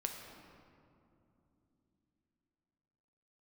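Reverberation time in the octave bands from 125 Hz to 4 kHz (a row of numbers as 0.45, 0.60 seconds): 4.2, 4.5, 3.3, 2.6, 1.8, 1.3 seconds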